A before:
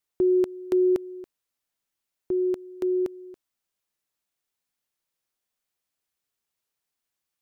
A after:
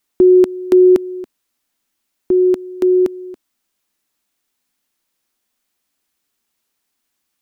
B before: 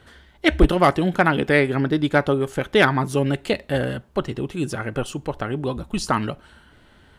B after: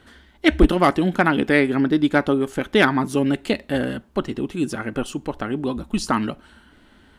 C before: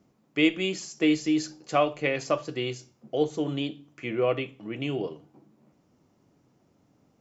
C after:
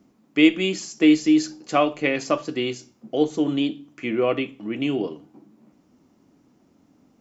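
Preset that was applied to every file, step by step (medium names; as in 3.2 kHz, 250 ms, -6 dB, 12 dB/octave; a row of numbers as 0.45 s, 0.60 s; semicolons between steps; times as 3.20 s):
ten-band graphic EQ 125 Hz -7 dB, 250 Hz +7 dB, 500 Hz -3 dB; peak normalisation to -3 dBFS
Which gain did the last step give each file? +11.0 dB, 0.0 dB, +4.5 dB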